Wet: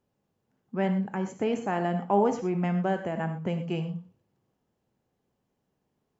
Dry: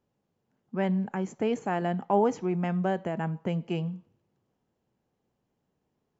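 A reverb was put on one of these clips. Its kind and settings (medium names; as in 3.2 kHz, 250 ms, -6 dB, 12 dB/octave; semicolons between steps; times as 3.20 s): gated-style reverb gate 140 ms flat, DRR 7 dB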